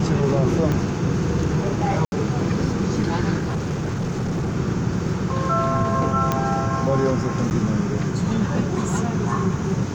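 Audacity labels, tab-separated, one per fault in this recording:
0.720000	0.720000	click −12 dBFS
2.050000	2.120000	drop-out 71 ms
3.380000	4.570000	clipping −20.5 dBFS
6.320000	6.320000	click −7 dBFS
7.500000	7.510000	drop-out 9.3 ms

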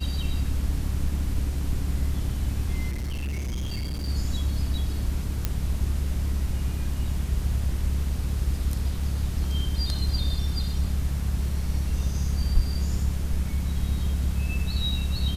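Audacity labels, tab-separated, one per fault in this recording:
2.910000	4.090000	clipping −26.5 dBFS
5.450000	5.450000	click −11 dBFS

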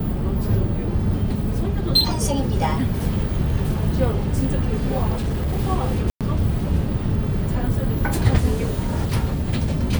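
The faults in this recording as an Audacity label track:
5.150000	5.600000	clipping −19 dBFS
6.100000	6.210000	drop-out 107 ms

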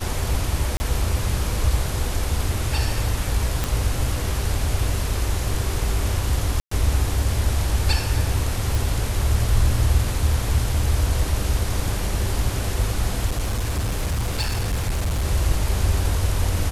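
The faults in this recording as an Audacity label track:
0.770000	0.800000	drop-out 30 ms
3.640000	3.640000	click
6.600000	6.710000	drop-out 114 ms
8.750000	8.750000	click
13.270000	15.250000	clipping −19 dBFS

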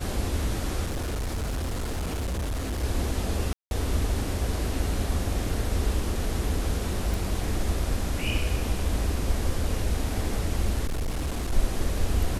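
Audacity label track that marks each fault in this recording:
0.840000	2.840000	clipping −26 dBFS
3.530000	3.710000	drop-out 181 ms
7.140000	7.140000	click
10.860000	11.530000	clipping −24.5 dBFS

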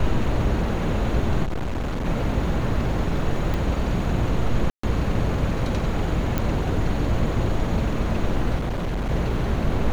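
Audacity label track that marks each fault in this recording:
1.430000	2.060000	clipping −23 dBFS
3.540000	3.540000	click
4.700000	4.830000	drop-out 134 ms
6.380000	6.380000	click −10 dBFS
8.570000	9.100000	clipping −22 dBFS

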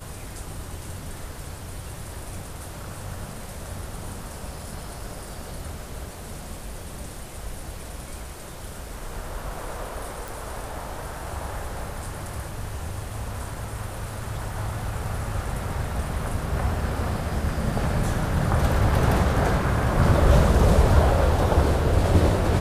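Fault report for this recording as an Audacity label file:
10.280000	10.280000	click

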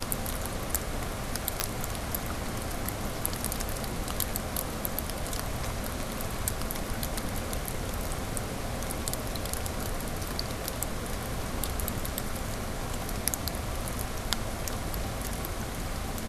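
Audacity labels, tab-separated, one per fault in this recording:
1.600000	1.600000	click −6 dBFS

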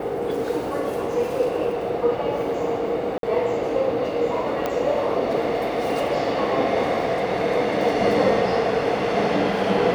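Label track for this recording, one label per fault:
3.180000	3.230000	drop-out 52 ms
4.660000	4.660000	click −11 dBFS

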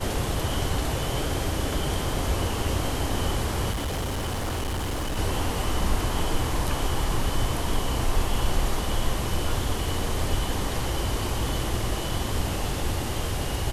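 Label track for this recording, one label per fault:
3.710000	5.190000	clipping −25 dBFS

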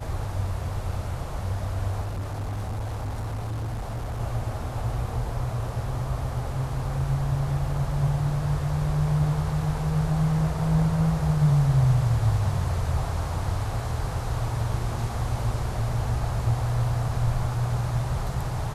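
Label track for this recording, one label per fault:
2.030000	4.210000	clipping −27 dBFS

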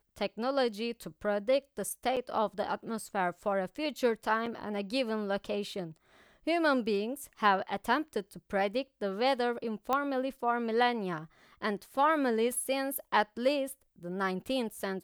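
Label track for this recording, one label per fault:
2.160000	2.170000	drop-out 7.1 ms
4.460000	4.460000	drop-out 4.9 ms
9.930000	9.930000	click −16 dBFS

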